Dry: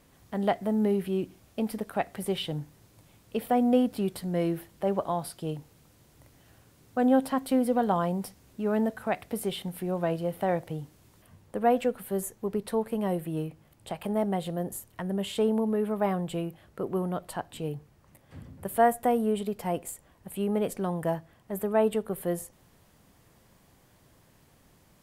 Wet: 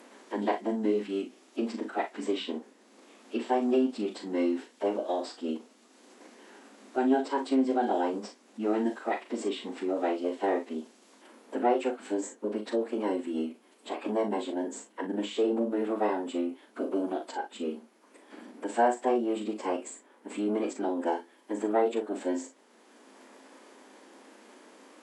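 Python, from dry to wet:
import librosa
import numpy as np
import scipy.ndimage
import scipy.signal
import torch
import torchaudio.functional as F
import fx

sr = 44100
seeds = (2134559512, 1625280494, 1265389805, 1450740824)

p1 = fx.pitch_keep_formants(x, sr, semitones=-11.5)
p2 = fx.brickwall_highpass(p1, sr, low_hz=210.0)
p3 = p2 + fx.room_early_taps(p2, sr, ms=(38, 57), db=(-7.0, -14.5), dry=0)
y = fx.band_squash(p3, sr, depth_pct=40)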